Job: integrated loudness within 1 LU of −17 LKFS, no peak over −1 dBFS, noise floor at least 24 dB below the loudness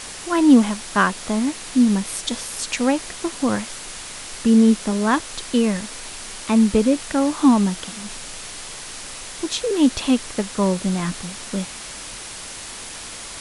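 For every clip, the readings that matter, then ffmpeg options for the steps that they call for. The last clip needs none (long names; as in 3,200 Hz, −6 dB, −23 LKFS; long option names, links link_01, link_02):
background noise floor −35 dBFS; target noise floor −44 dBFS; integrated loudness −20.0 LKFS; sample peak −3.0 dBFS; target loudness −17.0 LKFS
→ -af "afftdn=noise_reduction=9:noise_floor=-35"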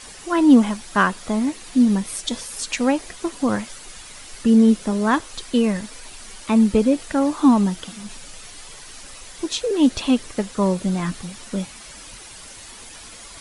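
background noise floor −41 dBFS; target noise floor −44 dBFS
→ -af "afftdn=noise_reduction=6:noise_floor=-41"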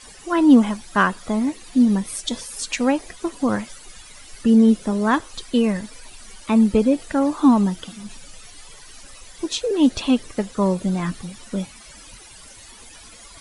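background noise floor −44 dBFS; integrated loudness −20.0 LKFS; sample peak −3.0 dBFS; target loudness −17.0 LKFS
→ -af "volume=3dB,alimiter=limit=-1dB:level=0:latency=1"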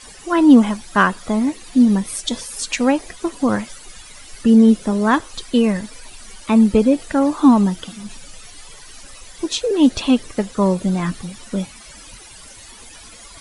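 integrated loudness −17.0 LKFS; sample peak −1.0 dBFS; background noise floor −41 dBFS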